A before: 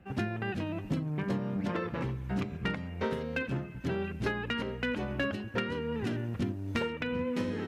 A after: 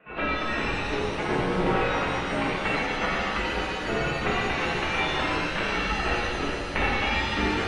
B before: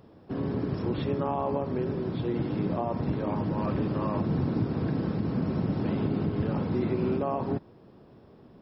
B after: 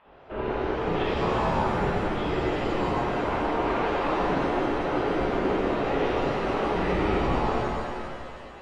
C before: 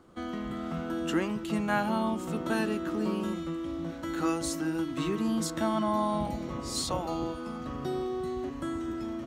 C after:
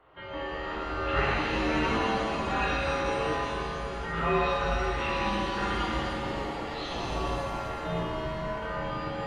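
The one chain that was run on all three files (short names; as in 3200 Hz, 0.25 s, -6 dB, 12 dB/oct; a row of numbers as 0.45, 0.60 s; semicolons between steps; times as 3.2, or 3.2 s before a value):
mistuned SSB -110 Hz 160–3200 Hz; spectral gate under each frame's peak -10 dB weak; shimmer reverb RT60 2.4 s, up +7 st, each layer -8 dB, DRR -7 dB; normalise peaks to -12 dBFS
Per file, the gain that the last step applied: +8.5, +6.0, +2.5 dB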